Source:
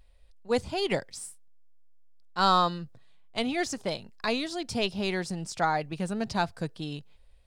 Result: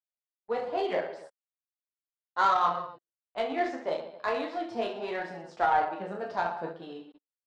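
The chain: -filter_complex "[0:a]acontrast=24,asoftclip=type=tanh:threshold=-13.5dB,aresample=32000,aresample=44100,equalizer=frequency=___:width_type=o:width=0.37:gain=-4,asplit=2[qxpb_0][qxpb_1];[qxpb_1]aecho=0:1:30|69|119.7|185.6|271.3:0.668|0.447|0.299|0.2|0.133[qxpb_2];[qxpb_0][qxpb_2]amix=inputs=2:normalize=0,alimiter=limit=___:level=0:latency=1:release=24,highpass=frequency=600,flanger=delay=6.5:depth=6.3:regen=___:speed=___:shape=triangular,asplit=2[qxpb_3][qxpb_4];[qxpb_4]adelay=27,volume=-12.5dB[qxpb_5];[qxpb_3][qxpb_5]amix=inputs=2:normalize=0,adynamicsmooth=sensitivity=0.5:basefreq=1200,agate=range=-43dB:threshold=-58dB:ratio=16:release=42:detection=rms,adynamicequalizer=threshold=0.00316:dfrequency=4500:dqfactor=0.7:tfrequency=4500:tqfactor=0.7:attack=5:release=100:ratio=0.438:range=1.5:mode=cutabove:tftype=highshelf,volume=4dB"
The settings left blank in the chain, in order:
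2400, -13.5dB, 15, 0.38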